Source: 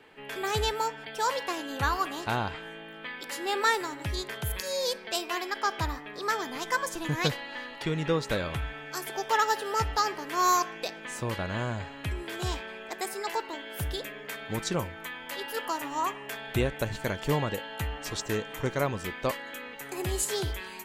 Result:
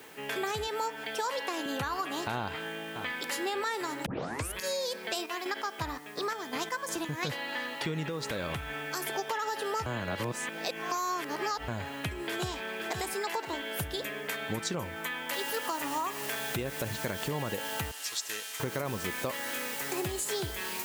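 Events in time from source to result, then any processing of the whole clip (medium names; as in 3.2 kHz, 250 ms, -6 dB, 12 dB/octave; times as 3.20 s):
0.67–1.66 s: high-pass 180 Hz 24 dB/octave
2.38–3.43 s: echo throw 570 ms, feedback 30%, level -14.5 dB
4.06 s: tape start 0.50 s
5.10–7.23 s: square tremolo 2.8 Hz, depth 60%, duty 45%
8.08–9.19 s: compression, threshold -32 dBFS
9.86–11.68 s: reverse
12.27–12.94 s: echo throw 520 ms, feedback 30%, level -8 dB
15.33 s: noise floor step -61 dB -44 dB
17.91–18.60 s: band-pass filter 6.4 kHz, Q 0.56
whole clip: peak limiter -21.5 dBFS; compression, threshold -34 dBFS; high-pass 100 Hz 12 dB/octave; trim +4.5 dB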